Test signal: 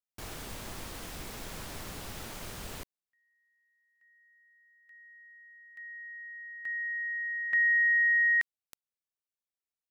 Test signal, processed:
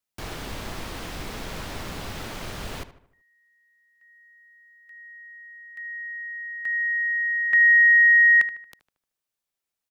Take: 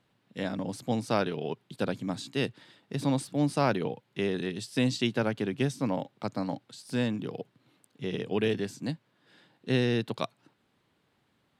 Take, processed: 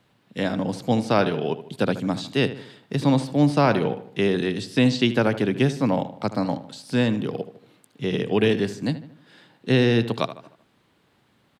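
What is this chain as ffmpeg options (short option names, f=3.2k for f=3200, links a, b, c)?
-filter_complex "[0:a]acrossover=split=380|5400[a][b][c];[c]acompressor=threshold=-59dB:ratio=6:attack=21:release=35:detection=rms[d];[a][b][d]amix=inputs=3:normalize=0,asplit=2[e][f];[f]adelay=76,lowpass=f=2.9k:p=1,volume=-13dB,asplit=2[g][h];[h]adelay=76,lowpass=f=2.9k:p=1,volume=0.48,asplit=2[i][j];[j]adelay=76,lowpass=f=2.9k:p=1,volume=0.48,asplit=2[k][l];[l]adelay=76,lowpass=f=2.9k:p=1,volume=0.48,asplit=2[m][n];[n]adelay=76,lowpass=f=2.9k:p=1,volume=0.48[o];[e][g][i][k][m][o]amix=inputs=6:normalize=0,alimiter=level_in=15.5dB:limit=-1dB:release=50:level=0:latency=1,volume=-7.5dB"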